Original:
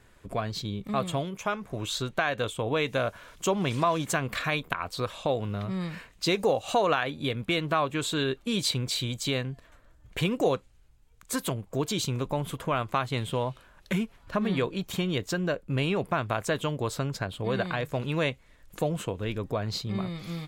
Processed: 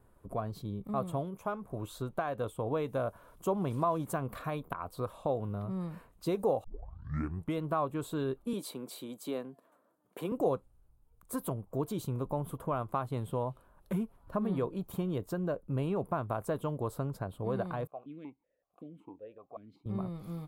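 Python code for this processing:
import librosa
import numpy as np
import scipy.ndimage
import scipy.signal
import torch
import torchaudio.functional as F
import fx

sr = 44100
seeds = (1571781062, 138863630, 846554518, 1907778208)

y = fx.highpass(x, sr, hz=220.0, slope=24, at=(8.53, 10.32))
y = fx.vowel_held(y, sr, hz=5.3, at=(17.87, 19.86))
y = fx.edit(y, sr, fx.tape_start(start_s=6.64, length_s=0.95), tone=tone)
y = fx.band_shelf(y, sr, hz=3500.0, db=-15.5, octaves=2.5)
y = y * 10.0 ** (-4.5 / 20.0)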